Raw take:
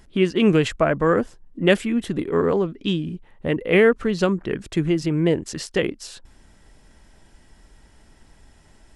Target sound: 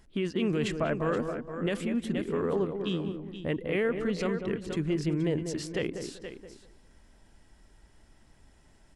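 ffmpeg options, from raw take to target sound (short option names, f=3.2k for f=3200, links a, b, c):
-filter_complex "[0:a]asplit=2[a][b];[b]aecho=0:1:474:0.237[c];[a][c]amix=inputs=2:normalize=0,alimiter=limit=-12dB:level=0:latency=1:release=20,asplit=2[d][e];[e]adelay=194,lowpass=f=900:p=1,volume=-6dB,asplit=2[f][g];[g]adelay=194,lowpass=f=900:p=1,volume=0.24,asplit=2[h][i];[i]adelay=194,lowpass=f=900:p=1,volume=0.24[j];[f][h][j]amix=inputs=3:normalize=0[k];[d][k]amix=inputs=2:normalize=0,volume=-8dB"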